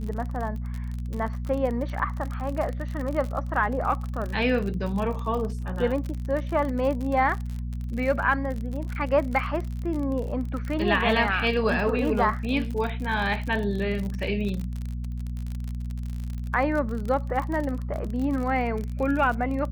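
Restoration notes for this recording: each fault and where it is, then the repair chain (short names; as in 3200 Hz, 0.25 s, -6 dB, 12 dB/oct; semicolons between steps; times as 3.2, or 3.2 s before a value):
crackle 45/s -30 dBFS
hum 60 Hz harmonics 4 -31 dBFS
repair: de-click; de-hum 60 Hz, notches 4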